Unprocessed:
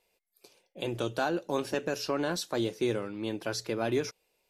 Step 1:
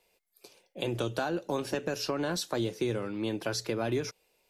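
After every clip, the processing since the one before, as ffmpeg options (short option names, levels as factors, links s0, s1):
-filter_complex "[0:a]acrossover=split=160[s0][s1];[s1]acompressor=threshold=0.0251:ratio=4[s2];[s0][s2]amix=inputs=2:normalize=0,volume=1.5"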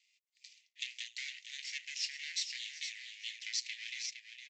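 -af "aeval=exprs='max(val(0),0)':c=same,asuperpass=centerf=3900:order=20:qfactor=0.69,aecho=1:1:462:0.398,volume=1.78"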